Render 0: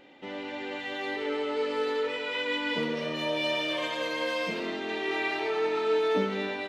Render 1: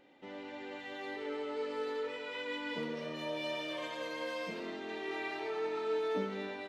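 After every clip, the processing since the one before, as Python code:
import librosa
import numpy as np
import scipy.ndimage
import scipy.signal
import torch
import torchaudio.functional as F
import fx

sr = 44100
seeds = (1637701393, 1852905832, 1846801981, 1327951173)

y = fx.peak_eq(x, sr, hz=2900.0, db=-3.5, octaves=1.1)
y = F.gain(torch.from_numpy(y), -8.0).numpy()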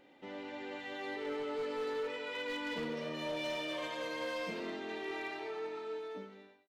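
y = fx.fade_out_tail(x, sr, length_s=1.98)
y = np.clip(y, -10.0 ** (-34.0 / 20.0), 10.0 ** (-34.0 / 20.0))
y = F.gain(torch.from_numpy(y), 1.0).numpy()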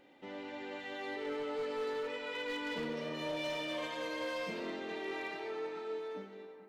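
y = fx.echo_wet_lowpass(x, sr, ms=427, feedback_pct=62, hz=1500.0, wet_db=-15.0)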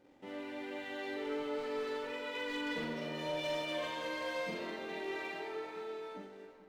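y = fx.backlash(x, sr, play_db=-58.5)
y = fx.doubler(y, sr, ms=44.0, db=-4)
y = F.gain(torch.from_numpy(y), -1.0).numpy()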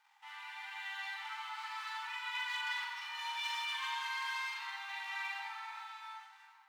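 y = fx.brickwall_highpass(x, sr, low_hz=780.0)
y = F.gain(torch.from_numpy(y), 3.5).numpy()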